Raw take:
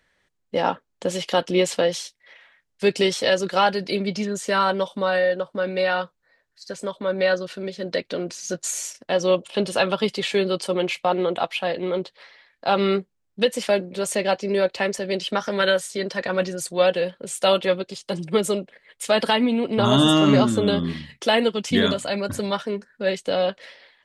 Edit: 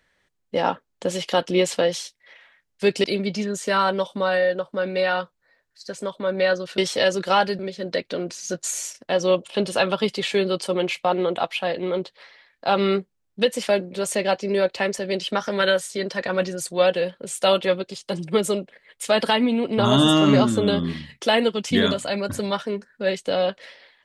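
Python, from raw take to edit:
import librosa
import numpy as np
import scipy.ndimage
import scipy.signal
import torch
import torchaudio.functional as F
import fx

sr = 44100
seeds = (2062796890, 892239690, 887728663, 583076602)

y = fx.edit(x, sr, fx.move(start_s=3.04, length_s=0.81, to_s=7.59), tone=tone)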